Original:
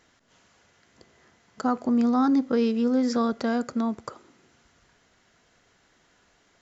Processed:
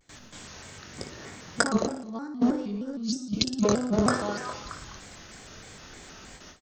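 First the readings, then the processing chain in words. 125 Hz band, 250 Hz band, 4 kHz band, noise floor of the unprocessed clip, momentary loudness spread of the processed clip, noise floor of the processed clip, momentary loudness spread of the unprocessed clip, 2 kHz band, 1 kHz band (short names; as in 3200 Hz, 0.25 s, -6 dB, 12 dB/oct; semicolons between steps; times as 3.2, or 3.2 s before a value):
n/a, -4.0 dB, +9.5 dB, -65 dBFS, 20 LU, -49 dBFS, 9 LU, +6.0 dB, -2.0 dB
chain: delay with a stepping band-pass 0.209 s, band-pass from 450 Hz, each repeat 0.7 oct, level -9 dB; spectral gain 2.98–3.64, 360–2400 Hz -22 dB; doubler 22 ms -10 dB; limiter -19.5 dBFS, peak gain reduction 6.5 dB; negative-ratio compressor -34 dBFS, ratio -0.5; high shelf 3500 Hz +9 dB; feedback echo 62 ms, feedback 58%, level -10 dB; gate with hold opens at -41 dBFS; low shelf 260 Hz +9 dB; shaped vibrato square 3.2 Hz, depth 160 cents; gain +3.5 dB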